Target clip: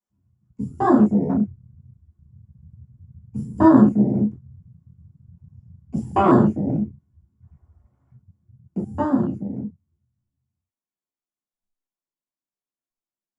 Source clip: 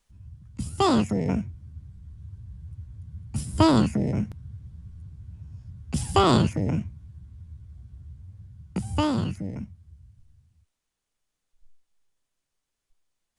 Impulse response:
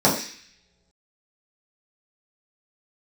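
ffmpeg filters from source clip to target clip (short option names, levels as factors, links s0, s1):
-filter_complex "[0:a]asplit=3[s0][s1][s2];[s0]afade=t=out:st=7.41:d=0.02[s3];[s1]acrusher=bits=8:mix=0:aa=0.5,afade=t=in:st=7.41:d=0.02,afade=t=out:st=8.15:d=0.02[s4];[s2]afade=t=in:st=8.15:d=0.02[s5];[s3][s4][s5]amix=inputs=3:normalize=0[s6];[1:a]atrim=start_sample=2205,atrim=end_sample=3969,asetrate=57330,aresample=44100[s7];[s6][s7]afir=irnorm=-1:irlink=0,afwtdn=0.282,volume=0.133"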